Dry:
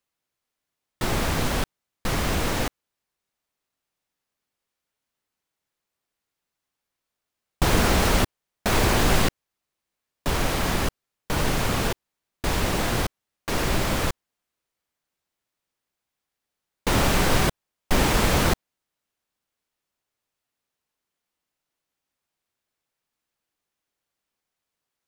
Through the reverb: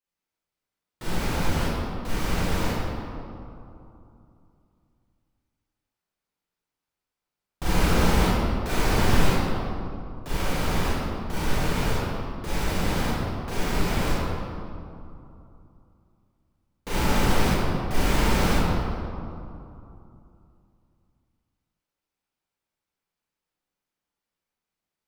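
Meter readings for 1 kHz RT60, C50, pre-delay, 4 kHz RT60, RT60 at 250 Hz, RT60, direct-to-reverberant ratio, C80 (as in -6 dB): 2.9 s, -5.0 dB, 30 ms, 1.4 s, 3.2 s, 2.8 s, -10.0 dB, -2.0 dB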